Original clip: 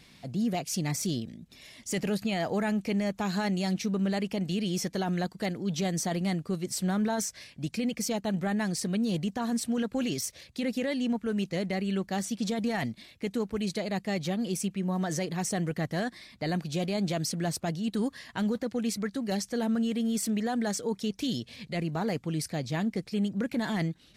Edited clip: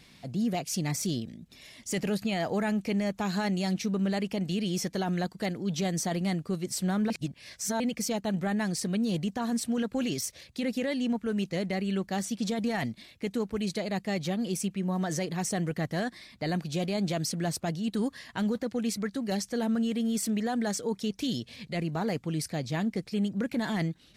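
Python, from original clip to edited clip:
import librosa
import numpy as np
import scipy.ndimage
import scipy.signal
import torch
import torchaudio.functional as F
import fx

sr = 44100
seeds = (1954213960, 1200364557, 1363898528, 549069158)

y = fx.edit(x, sr, fx.reverse_span(start_s=7.1, length_s=0.7), tone=tone)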